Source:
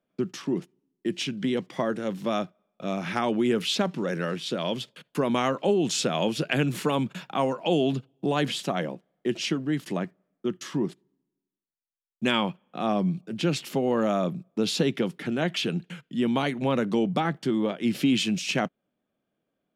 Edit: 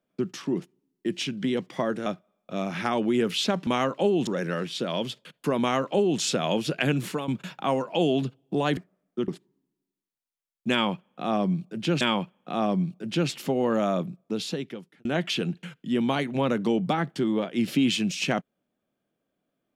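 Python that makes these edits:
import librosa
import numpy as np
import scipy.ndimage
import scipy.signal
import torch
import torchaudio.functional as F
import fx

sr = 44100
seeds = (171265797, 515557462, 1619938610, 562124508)

y = fx.edit(x, sr, fx.cut(start_s=2.06, length_s=0.31),
    fx.duplicate(start_s=5.31, length_s=0.6, to_s=3.98),
    fx.fade_out_to(start_s=6.74, length_s=0.25, floor_db=-11.5),
    fx.cut(start_s=8.48, length_s=1.56),
    fx.cut(start_s=10.55, length_s=0.29),
    fx.repeat(start_s=12.28, length_s=1.29, count=2),
    fx.fade_out_span(start_s=14.21, length_s=1.11), tone=tone)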